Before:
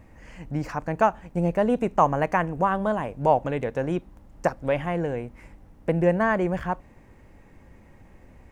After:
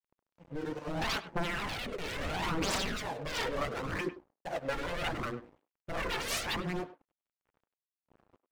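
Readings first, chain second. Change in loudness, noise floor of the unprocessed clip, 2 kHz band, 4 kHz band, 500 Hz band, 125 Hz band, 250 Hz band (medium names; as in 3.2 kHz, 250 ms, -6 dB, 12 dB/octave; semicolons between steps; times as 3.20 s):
-10.0 dB, -53 dBFS, -4.0 dB, +11.0 dB, -13.5 dB, -12.0 dB, -12.0 dB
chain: local Wiener filter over 25 samples; high-pass 120 Hz 12 dB/octave; tone controls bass -7 dB, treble +7 dB; harmonic-percussive split percussive -13 dB; dynamic bell 330 Hz, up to +6 dB, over -49 dBFS, Q 7; compressor with a negative ratio -22 dBFS, ratio -0.5; gated-style reverb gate 120 ms rising, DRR -5 dB; wavefolder -27.5 dBFS; phaser 0.73 Hz, delay 2.3 ms, feedback 51%; rotary cabinet horn 0.65 Hz, later 5.5 Hz, at 2.62 s; crossover distortion -49.5 dBFS; speakerphone echo 100 ms, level -14 dB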